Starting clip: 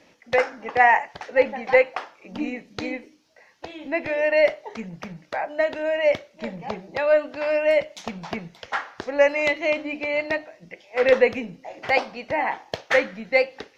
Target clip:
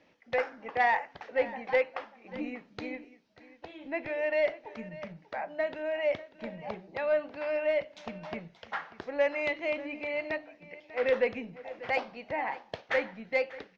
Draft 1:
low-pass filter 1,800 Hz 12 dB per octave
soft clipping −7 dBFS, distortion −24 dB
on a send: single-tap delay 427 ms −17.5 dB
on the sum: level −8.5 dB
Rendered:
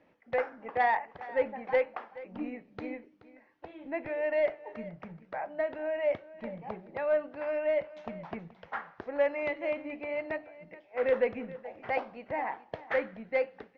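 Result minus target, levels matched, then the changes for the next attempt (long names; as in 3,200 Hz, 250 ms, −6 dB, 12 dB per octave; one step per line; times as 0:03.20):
4,000 Hz band −7.0 dB; echo 164 ms early
change: low-pass filter 4,000 Hz 12 dB per octave
change: single-tap delay 591 ms −17.5 dB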